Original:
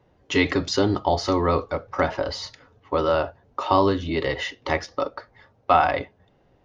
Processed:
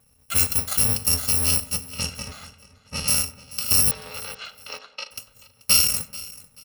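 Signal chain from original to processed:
samples in bit-reversed order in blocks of 128 samples
0:03.91–0:05.11: Chebyshev band-pass filter 400–4,300 Hz, order 3
feedback echo with a low-pass in the loop 96 ms, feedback 67%, low-pass 2,000 Hz, level −16.5 dB
0:01.87–0:03.08: low-pass that shuts in the quiet parts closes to 2,600 Hz, open at −11.5 dBFS
on a send: repeating echo 435 ms, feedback 28%, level −19 dB

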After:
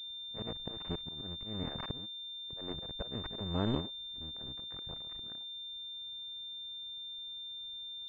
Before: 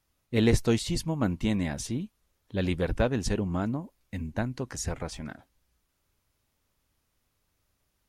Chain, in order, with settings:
sub-harmonics by changed cycles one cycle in 2, muted
volume swells 779 ms
switching amplifier with a slow clock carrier 3,600 Hz
level +5 dB

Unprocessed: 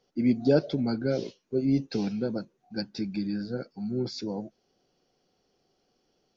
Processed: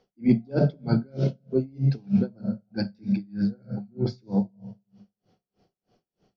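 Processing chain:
on a send at −8 dB: convolution reverb RT60 0.85 s, pre-delay 3 ms
on the sum: transient designer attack −4 dB, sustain 0 dB
high-shelf EQ 4,600 Hz −12 dB
tremolo with a sine in dB 3.2 Hz, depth 34 dB
level +7 dB

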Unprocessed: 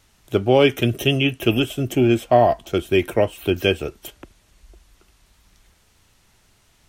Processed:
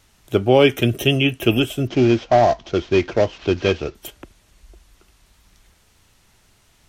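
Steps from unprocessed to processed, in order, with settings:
0:01.87–0:03.95: variable-slope delta modulation 32 kbit/s
level +1.5 dB

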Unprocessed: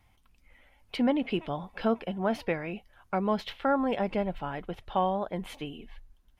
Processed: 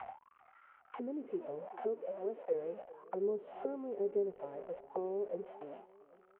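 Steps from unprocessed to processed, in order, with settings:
linear delta modulator 16 kbit/s, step −30.5 dBFS
noise gate with hold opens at −33 dBFS
0:01.65–0:02.55: high-pass filter 280 Hz 12 dB per octave
0:03.20–0:03.68: dynamic equaliser 1,900 Hz, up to −6 dB, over −44 dBFS, Q 1
harmonic and percussive parts rebalanced harmonic +9 dB
downward compressor 2 to 1, threshold −35 dBFS, peak gain reduction 12 dB
envelope filter 400–1,500 Hz, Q 11, down, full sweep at −28 dBFS
repeating echo 395 ms, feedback 53%, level −20 dB
level +6 dB

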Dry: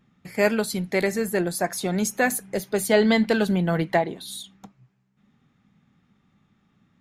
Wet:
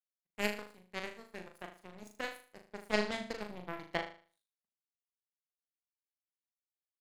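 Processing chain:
power curve on the samples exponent 3
flutter between parallel walls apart 6.6 metres, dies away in 0.41 s
level −5 dB

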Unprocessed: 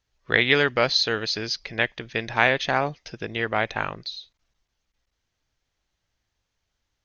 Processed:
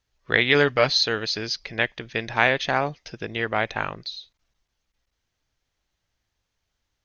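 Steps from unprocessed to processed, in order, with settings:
0:00.54–0:01.06: comb filter 6.8 ms, depth 53%

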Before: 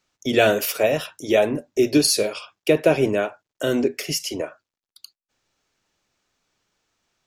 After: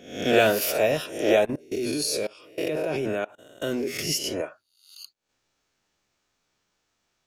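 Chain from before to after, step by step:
peak hold with a rise ahead of every peak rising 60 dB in 0.59 s
0:01.45–0:03.88: output level in coarse steps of 23 dB
level −4 dB

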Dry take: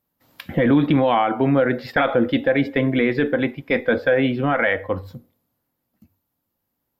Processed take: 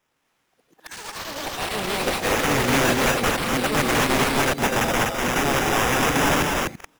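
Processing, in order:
played backwards from end to start
high-pass filter 120 Hz 24 dB per octave
notch filter 600 Hz, Q 12
sample-rate reduction 4,300 Hz, jitter 0%
wrap-around overflow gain 14.5 dB
pitch-shifted copies added −12 semitones −9 dB
loudspeakers that aren't time-aligned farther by 71 metres −9 dB, 85 metres −3 dB
delay with pitch and tempo change per echo 82 ms, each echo +7 semitones, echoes 3, each echo −6 dB
one half of a high-frequency compander encoder only
level −2.5 dB

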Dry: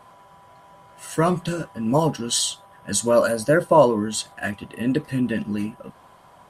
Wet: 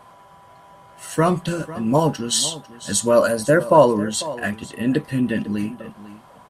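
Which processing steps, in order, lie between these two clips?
single-tap delay 498 ms −16.5 dB
level +2 dB

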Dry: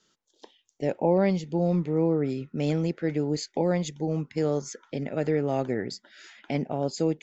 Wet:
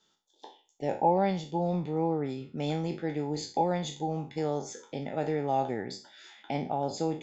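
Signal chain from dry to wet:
peak hold with a decay on every bin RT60 0.36 s
hollow resonant body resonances 820/3,500 Hz, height 14 dB, ringing for 25 ms
level −6 dB

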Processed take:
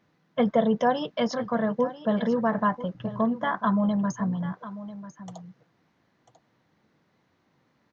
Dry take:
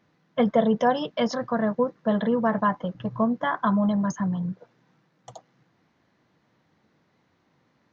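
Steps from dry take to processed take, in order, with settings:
single-tap delay 994 ms −14.5 dB
level −1.5 dB

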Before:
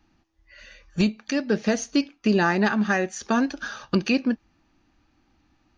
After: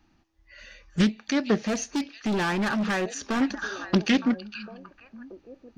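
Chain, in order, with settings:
echo through a band-pass that steps 457 ms, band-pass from 3,400 Hz, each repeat −1.4 octaves, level −10 dB
0:01.57–0:03.41: hard clipping −23 dBFS, distortion −8 dB
highs frequency-modulated by the lows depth 0.39 ms

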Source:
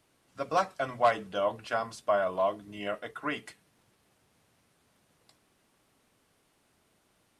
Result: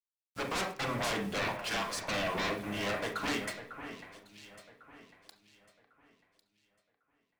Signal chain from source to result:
0:01.44–0:02.35: high-pass filter 700 Hz 12 dB per octave
in parallel at −1 dB: downward compressor 6 to 1, threshold −38 dBFS, peak gain reduction 18 dB
on the sum: leveller curve on the samples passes 2
wave folding −23 dBFS
bit reduction 9 bits
soft clipping −29 dBFS, distortion −14 dB
delay that swaps between a low-pass and a high-pass 550 ms, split 2,400 Hz, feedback 53%, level −9.5 dB
on a send at −5 dB: convolution reverb RT60 0.45 s, pre-delay 30 ms
on the sum: level −1.5 dB

